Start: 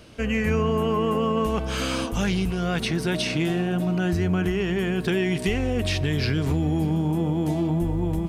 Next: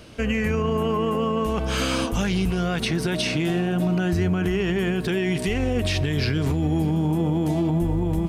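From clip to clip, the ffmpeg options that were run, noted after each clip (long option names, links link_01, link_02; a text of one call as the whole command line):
ffmpeg -i in.wav -af "alimiter=limit=-17dB:level=0:latency=1:release=60,volume=3dB" out.wav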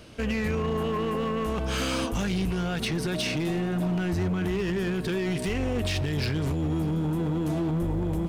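ffmpeg -i in.wav -af "asoftclip=type=hard:threshold=-20dB,volume=-3dB" out.wav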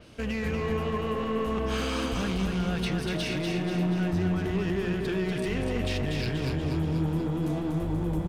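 ffmpeg -i in.wav -af "aecho=1:1:241|482|723|964|1205|1446|1687:0.631|0.334|0.177|0.0939|0.0498|0.0264|0.014,adynamicequalizer=threshold=0.00501:dfrequency=5100:dqfactor=0.7:tfrequency=5100:tqfactor=0.7:attack=5:release=100:ratio=0.375:range=2.5:mode=cutabove:tftype=highshelf,volume=-3dB" out.wav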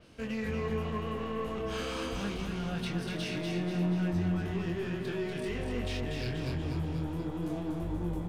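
ffmpeg -i in.wav -af "flanger=delay=22.5:depth=2.1:speed=0.26,volume=-2.5dB" out.wav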